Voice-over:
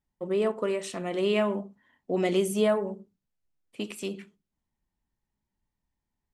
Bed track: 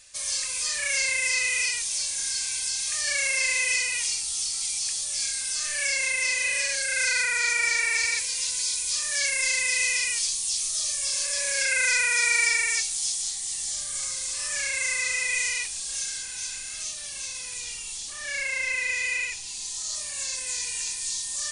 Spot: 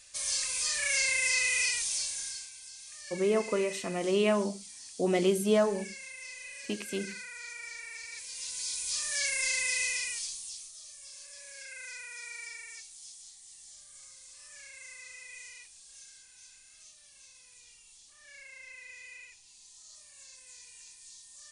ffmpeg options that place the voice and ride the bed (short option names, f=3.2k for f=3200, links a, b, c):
-filter_complex "[0:a]adelay=2900,volume=-1dB[a];[1:a]volume=10.5dB,afade=t=out:st=1.88:d=0.63:silence=0.158489,afade=t=in:st=8.08:d=0.91:silence=0.211349,afade=t=out:st=9.69:d=1.03:silence=0.16788[b];[a][b]amix=inputs=2:normalize=0"